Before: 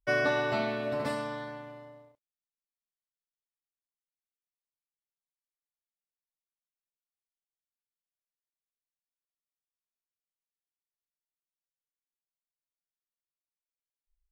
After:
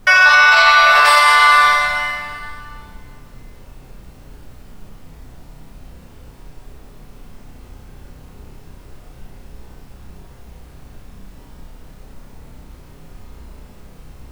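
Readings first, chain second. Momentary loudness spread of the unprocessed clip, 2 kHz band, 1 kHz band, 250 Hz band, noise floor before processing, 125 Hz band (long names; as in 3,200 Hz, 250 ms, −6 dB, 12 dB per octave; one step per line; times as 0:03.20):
18 LU, +25.0 dB, +26.0 dB, −1.0 dB, below −85 dBFS, +8.5 dB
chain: high-pass filter 1,000 Hz 24 dB per octave
downward compressor, threshold −36 dBFS, peak gain reduction 8.5 dB
background noise brown −72 dBFS
flutter between parallel walls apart 5.4 metres, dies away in 0.42 s
dense smooth reverb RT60 2.3 s, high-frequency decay 0.9×, DRR −2 dB
boost into a limiter +31.5 dB
level −1 dB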